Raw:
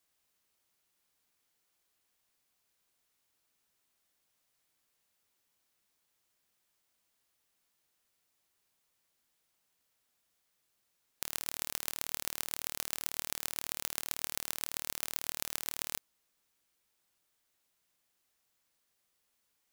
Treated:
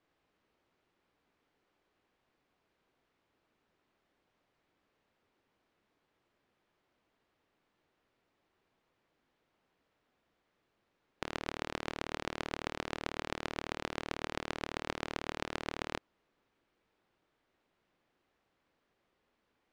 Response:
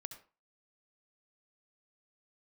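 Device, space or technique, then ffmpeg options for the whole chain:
phone in a pocket: -af "lowpass=3400,equalizer=frequency=340:width_type=o:width=1.4:gain=5,highshelf=frequency=2400:gain=-10,volume=8.5dB"

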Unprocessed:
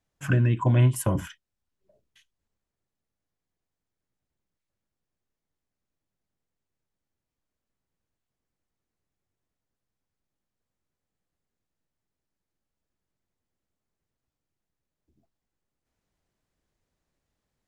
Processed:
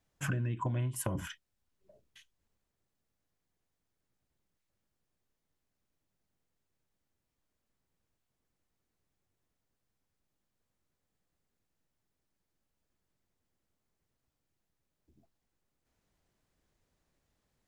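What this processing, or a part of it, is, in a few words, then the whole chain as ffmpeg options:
serial compression, peaks first: -af "acompressor=threshold=-28dB:ratio=5,acompressor=threshold=-36dB:ratio=2,volume=2dB"

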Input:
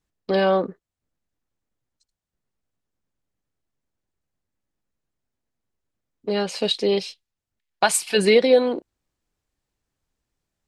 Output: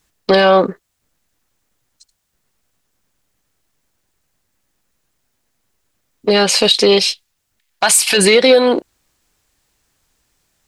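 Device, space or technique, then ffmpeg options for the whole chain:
mastering chain: -af "equalizer=frequency=3200:width_type=o:width=2.3:gain=-2.5,acompressor=threshold=-20dB:ratio=2.5,asoftclip=type=tanh:threshold=-12dB,tiltshelf=frequency=970:gain=-5.5,alimiter=level_in=17.5dB:limit=-1dB:release=50:level=0:latency=1,volume=-1dB"

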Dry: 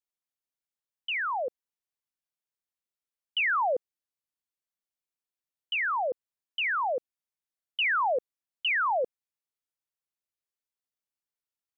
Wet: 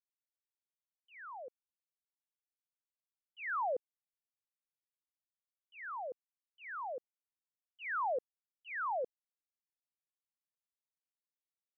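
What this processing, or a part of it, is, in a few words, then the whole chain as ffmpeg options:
hearing-loss simulation: -af "lowpass=2300,agate=range=-33dB:threshold=-19dB:ratio=3:detection=peak,volume=1.5dB"

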